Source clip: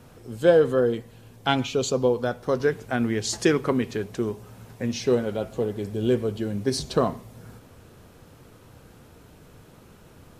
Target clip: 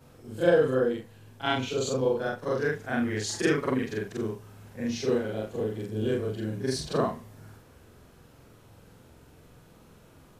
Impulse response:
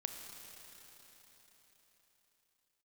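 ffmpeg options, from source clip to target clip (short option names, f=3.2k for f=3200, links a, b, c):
-af "afftfilt=real='re':imag='-im':win_size=4096:overlap=0.75,adynamicequalizer=threshold=0.00355:dfrequency=1700:dqfactor=2.5:tfrequency=1700:tqfactor=2.5:attack=5:release=100:ratio=0.375:range=2.5:mode=boostabove:tftype=bell"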